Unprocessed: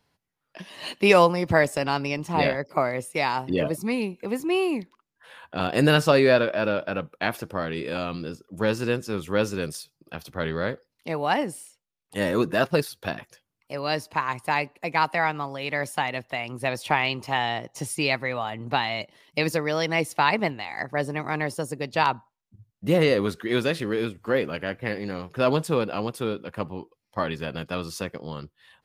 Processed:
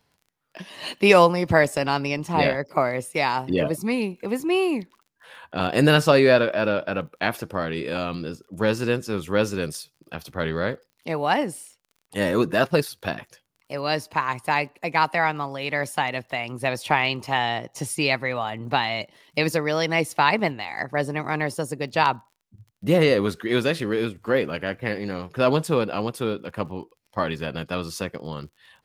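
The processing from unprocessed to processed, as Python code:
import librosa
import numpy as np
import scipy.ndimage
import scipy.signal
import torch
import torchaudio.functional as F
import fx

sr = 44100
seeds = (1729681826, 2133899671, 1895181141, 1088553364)

y = fx.dmg_crackle(x, sr, seeds[0], per_s=33.0, level_db=-47.0)
y = F.gain(torch.from_numpy(y), 2.0).numpy()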